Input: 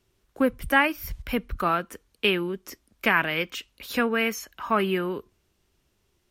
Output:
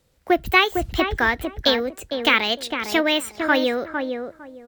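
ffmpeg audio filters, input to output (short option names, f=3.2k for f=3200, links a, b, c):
-filter_complex "[0:a]asplit=2[a][b];[b]adelay=614,lowpass=f=920:p=1,volume=-5dB,asplit=2[c][d];[d]adelay=614,lowpass=f=920:p=1,volume=0.21,asplit=2[e][f];[f]adelay=614,lowpass=f=920:p=1,volume=0.21[g];[c][e][g]amix=inputs=3:normalize=0[h];[a][h]amix=inputs=2:normalize=0,asetrate=59535,aresample=44100,volume=4.5dB"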